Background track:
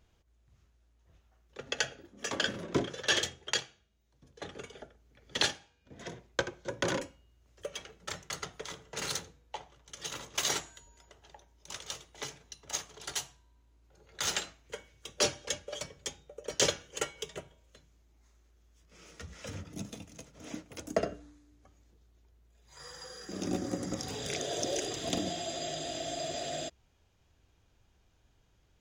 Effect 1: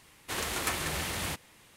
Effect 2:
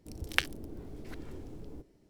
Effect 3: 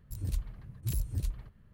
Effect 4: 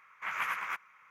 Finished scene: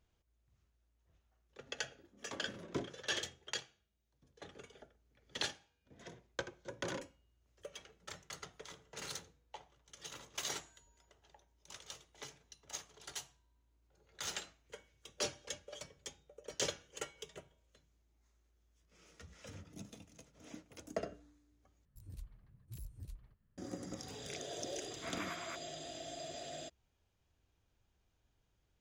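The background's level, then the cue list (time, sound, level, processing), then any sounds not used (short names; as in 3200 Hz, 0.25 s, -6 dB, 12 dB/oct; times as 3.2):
background track -9.5 dB
21.85 replace with 3 -16.5 dB
24.8 add 4 -12 dB
not used: 1, 2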